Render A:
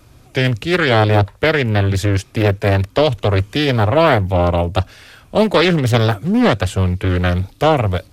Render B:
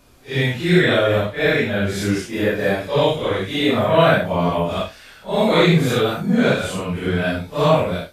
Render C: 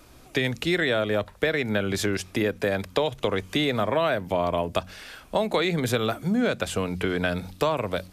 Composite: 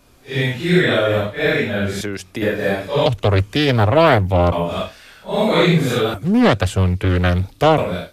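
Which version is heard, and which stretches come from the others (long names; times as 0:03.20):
B
0:02.01–0:02.42: punch in from C
0:03.06–0:04.52: punch in from A
0:06.14–0:07.78: punch in from A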